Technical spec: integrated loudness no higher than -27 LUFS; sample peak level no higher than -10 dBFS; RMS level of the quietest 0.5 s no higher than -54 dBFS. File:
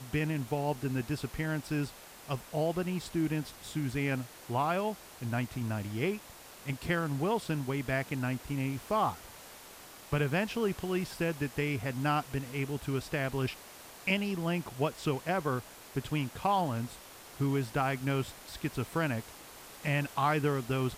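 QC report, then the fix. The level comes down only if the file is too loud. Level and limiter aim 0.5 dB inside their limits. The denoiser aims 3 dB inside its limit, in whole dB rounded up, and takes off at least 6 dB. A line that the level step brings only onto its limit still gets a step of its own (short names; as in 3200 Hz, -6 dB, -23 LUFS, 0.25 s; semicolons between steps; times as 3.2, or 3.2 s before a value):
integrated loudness -33.5 LUFS: OK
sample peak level -16.5 dBFS: OK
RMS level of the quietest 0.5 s -51 dBFS: fail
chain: denoiser 6 dB, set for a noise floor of -51 dBFS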